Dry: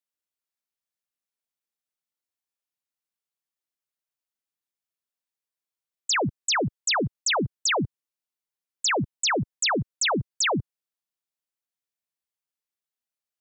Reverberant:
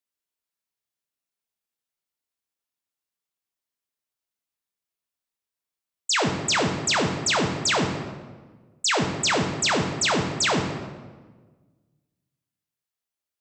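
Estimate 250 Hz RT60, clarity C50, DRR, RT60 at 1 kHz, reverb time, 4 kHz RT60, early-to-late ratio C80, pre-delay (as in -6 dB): 1.7 s, 5.0 dB, 2.0 dB, 1.3 s, 1.4 s, 0.90 s, 7.0 dB, 3 ms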